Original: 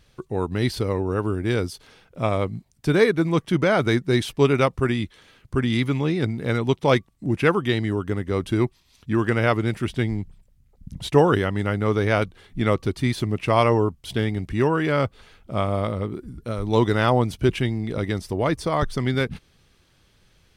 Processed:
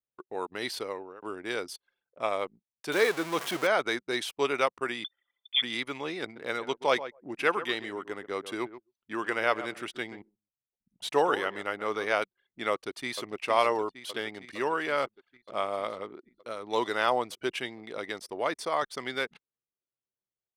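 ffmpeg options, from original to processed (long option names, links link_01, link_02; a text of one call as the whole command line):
ffmpeg -i in.wav -filter_complex "[0:a]asettb=1/sr,asplit=3[link_01][link_02][link_03];[link_01]atrim=end=2.924[link_04];[link_02]atrim=start=2.92:end=3.67,asetpts=PTS-STARTPTS,afade=type=in:duration=0.004:curve=qsin,afade=type=out:start_time=0.746:duration=0.004:curve=qsin,aeval=exprs='val(0)+0.5*0.0668*sgn(val(0))':channel_layout=same[link_05];[link_03]atrim=start=3.666[link_06];[link_04][link_05]acrossfade=duration=0.004:curve1=hsin:curve2=qsin[link_07];[link_07][link_06]acrossfade=duration=0.004:curve1=qsin:curve2=hsin,asettb=1/sr,asplit=3[link_08][link_09][link_10];[link_08]atrim=end=5.044[link_11];[link_09]atrim=start=5.04:end=5.62,asetpts=PTS-STARTPTS,afade=type=in:duration=0.004:curve=qsin,afade=type=out:start_time=0.576:duration=0.004:curve=qsin,lowpass=frequency=3100:width_type=q:width=0.5098,lowpass=frequency=3100:width_type=q:width=0.6013,lowpass=frequency=3100:width_type=q:width=0.9,lowpass=frequency=3100:width_type=q:width=2.563,afreqshift=-3600[link_12];[link_10]atrim=start=5.616[link_13];[link_11][link_12]acrossfade=duration=0.004:curve1=hsin:curve2=qsin[link_14];[link_14][link_13]acrossfade=duration=0.004:curve1=qsin:curve2=hsin,asplit=3[link_15][link_16][link_17];[link_15]afade=type=out:start_time=6.35:duration=0.02[link_18];[link_16]asplit=2[link_19][link_20];[link_20]adelay=131,lowpass=frequency=2000:poles=1,volume=-12.5dB,asplit=2[link_21][link_22];[link_22]adelay=131,lowpass=frequency=2000:poles=1,volume=0.17[link_23];[link_19][link_21][link_23]amix=inputs=3:normalize=0,afade=type=in:start_time=6.35:duration=0.02,afade=type=out:start_time=12.12:duration=0.02[link_24];[link_17]afade=type=in:start_time=12.12:duration=0.02[link_25];[link_18][link_24][link_25]amix=inputs=3:normalize=0,asplit=2[link_26][link_27];[link_27]afade=type=in:start_time=12.71:duration=0.01,afade=type=out:start_time=13.3:duration=0.01,aecho=0:1:460|920|1380|1840|2300|2760|3220|3680|4140|4600|5060|5520:0.298538|0.238831|0.191064|0.152852|0.122281|0.097825|0.07826|0.062608|0.0500864|0.0400691|0.0320553|0.0256442[link_28];[link_26][link_28]amix=inputs=2:normalize=0,asplit=2[link_29][link_30];[link_29]atrim=end=1.22,asetpts=PTS-STARTPTS,afade=type=out:start_time=0.82:duration=0.4:silence=0.0794328[link_31];[link_30]atrim=start=1.22,asetpts=PTS-STARTPTS,afade=type=in:duration=0.004:curve=hsin:silence=0.0794328[link_32];[link_31][link_32]concat=n=2:v=0:a=1,highpass=550,deesser=0.45,anlmdn=0.1,volume=-3.5dB" out.wav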